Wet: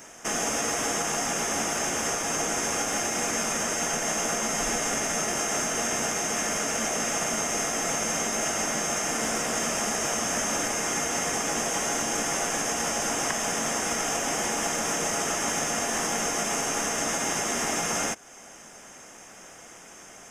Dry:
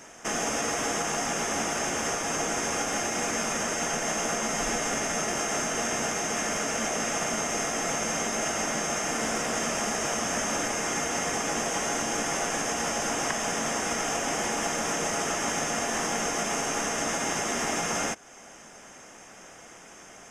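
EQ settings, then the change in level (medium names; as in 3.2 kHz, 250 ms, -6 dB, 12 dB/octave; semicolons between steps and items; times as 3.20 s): treble shelf 9.6 kHz +10 dB; 0.0 dB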